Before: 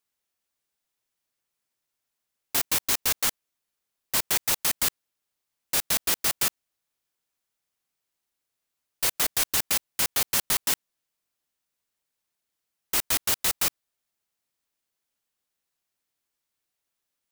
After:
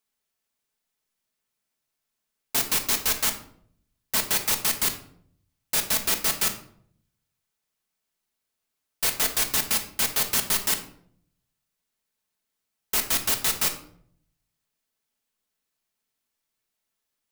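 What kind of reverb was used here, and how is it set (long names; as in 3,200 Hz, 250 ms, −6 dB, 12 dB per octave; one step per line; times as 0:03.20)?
rectangular room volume 1,000 cubic metres, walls furnished, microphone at 1.5 metres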